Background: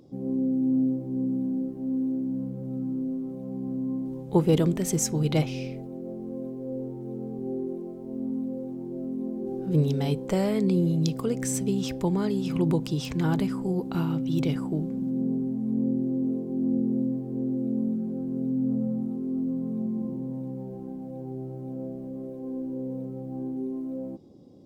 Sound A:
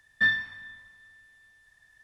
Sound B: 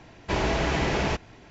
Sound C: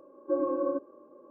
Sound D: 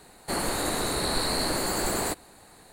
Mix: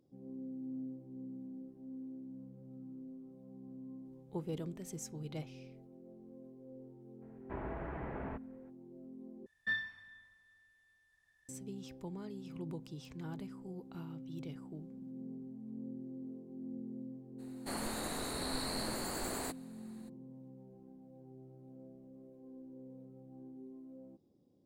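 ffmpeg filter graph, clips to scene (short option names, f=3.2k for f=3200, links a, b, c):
-filter_complex "[0:a]volume=-19dB[a];[2:a]lowpass=f=1.7k:w=0.5412,lowpass=f=1.7k:w=1.3066[b];[a]asplit=2[c][d];[c]atrim=end=9.464[e];[1:a]atrim=end=2.03,asetpts=PTS-STARTPTS,volume=-12.5dB[f];[d]atrim=start=11.486[g];[b]atrim=end=1.5,asetpts=PTS-STARTPTS,volume=-16.5dB,afade=t=in:d=0.02,afade=t=out:st=1.48:d=0.02,adelay=7210[h];[4:a]atrim=end=2.72,asetpts=PTS-STARTPTS,volume=-12dB,afade=t=in:d=0.02,afade=t=out:st=2.7:d=0.02,adelay=17380[i];[e][f]acrossfade=d=0.004:c1=hsin:c2=hsin[j];[j][g]acrossfade=d=0.004:c1=hsin:c2=hsin[k];[k][h][i]amix=inputs=3:normalize=0"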